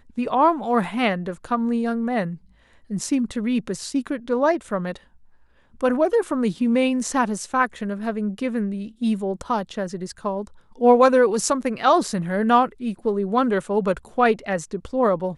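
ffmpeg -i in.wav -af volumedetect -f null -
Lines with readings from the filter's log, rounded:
mean_volume: -22.1 dB
max_volume: -4.3 dB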